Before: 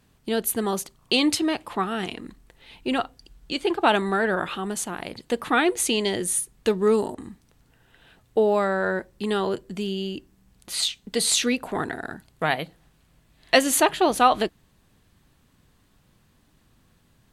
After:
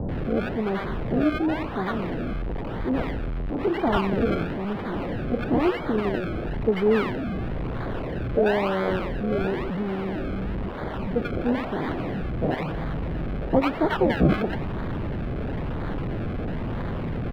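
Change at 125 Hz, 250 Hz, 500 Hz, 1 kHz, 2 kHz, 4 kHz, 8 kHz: +11.0 dB, +3.0 dB, -0.5 dB, -4.5 dB, -4.0 dB, -13.0 dB, under -30 dB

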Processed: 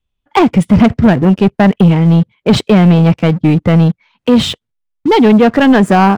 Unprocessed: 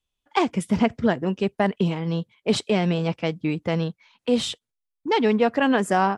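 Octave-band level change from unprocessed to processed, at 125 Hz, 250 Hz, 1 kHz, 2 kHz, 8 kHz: +17.5 dB, +15.0 dB, +10.5 dB, +9.5 dB, n/a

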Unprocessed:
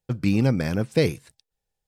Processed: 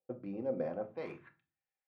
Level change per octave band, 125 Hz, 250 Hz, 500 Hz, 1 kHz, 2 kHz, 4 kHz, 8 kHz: -27.5 dB, -19.0 dB, -11.5 dB, -9.5 dB, -21.0 dB, under -30 dB, under -35 dB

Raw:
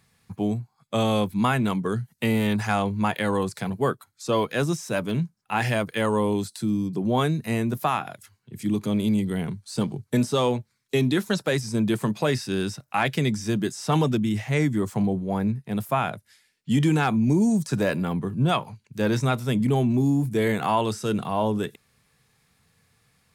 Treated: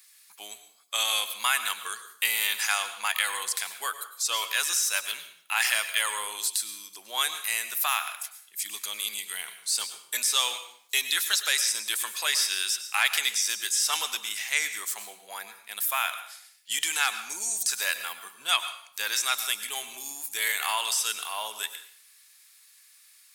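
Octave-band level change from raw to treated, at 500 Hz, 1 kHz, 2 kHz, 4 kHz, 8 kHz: -20.0, -5.5, +3.5, +8.5, +13.5 dB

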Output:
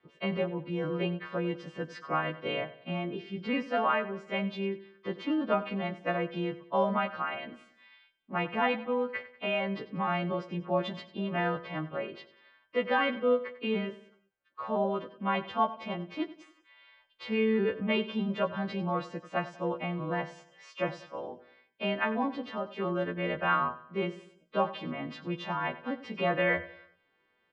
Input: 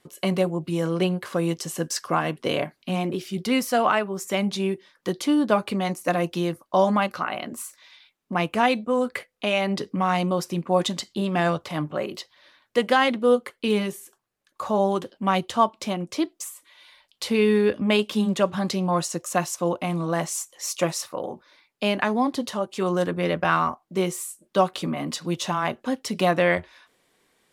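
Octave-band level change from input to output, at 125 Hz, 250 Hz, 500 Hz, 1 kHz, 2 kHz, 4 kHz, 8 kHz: -8.5 dB, -8.5 dB, -7.5 dB, -7.0 dB, -5.0 dB, -10.0 dB, under -30 dB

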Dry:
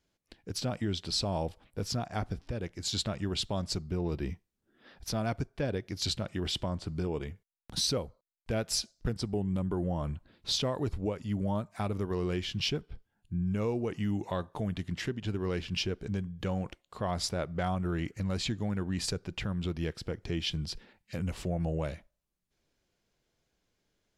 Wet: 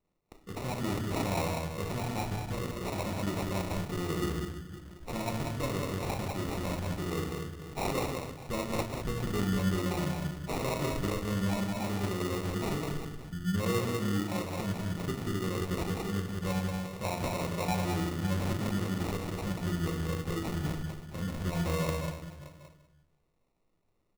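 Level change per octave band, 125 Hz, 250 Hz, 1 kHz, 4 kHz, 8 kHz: +1.0, +1.5, +4.0, -6.5, -2.5 dB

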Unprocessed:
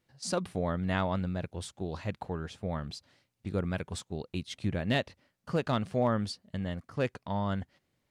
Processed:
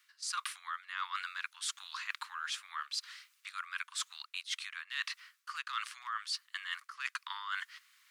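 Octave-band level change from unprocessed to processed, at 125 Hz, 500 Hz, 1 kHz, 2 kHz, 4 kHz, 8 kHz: under -40 dB, under -40 dB, -3.5 dB, +2.5 dB, +3.0 dB, +3.5 dB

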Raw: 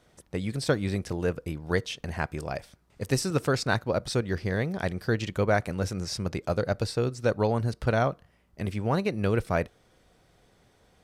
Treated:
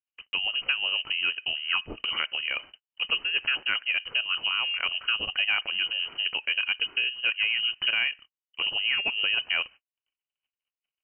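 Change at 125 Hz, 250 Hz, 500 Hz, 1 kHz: under -25 dB, -22.5 dB, -20.0 dB, -6.5 dB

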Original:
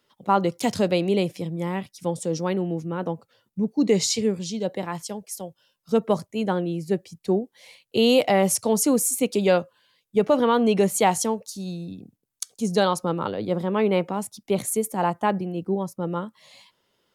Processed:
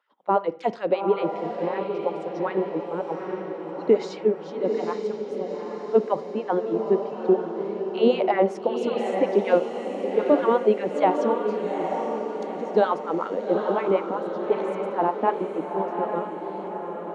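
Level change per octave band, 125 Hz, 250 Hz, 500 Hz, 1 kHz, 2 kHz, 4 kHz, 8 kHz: -9.5 dB, -4.0 dB, +1.5 dB, +1.0 dB, -3.0 dB, -11.0 dB, under -25 dB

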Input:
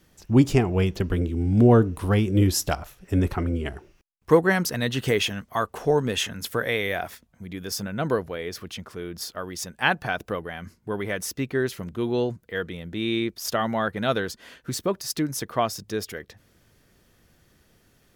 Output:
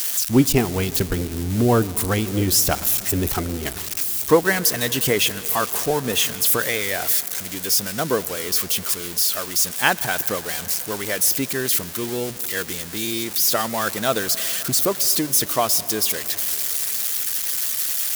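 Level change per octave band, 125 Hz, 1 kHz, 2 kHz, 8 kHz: -2.0, +3.0, +3.5, +14.5 dB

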